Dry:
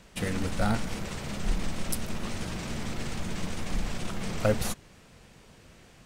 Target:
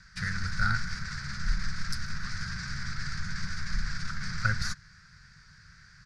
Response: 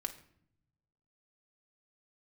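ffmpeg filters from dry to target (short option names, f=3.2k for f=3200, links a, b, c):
-af "firequalizer=gain_entry='entry(160,0);entry(260,-23);entry(670,-24);entry(1500,11);entry(2900,-15);entry(4700,8);entry(8000,-11);entry(15000,-26)':delay=0.05:min_phase=1"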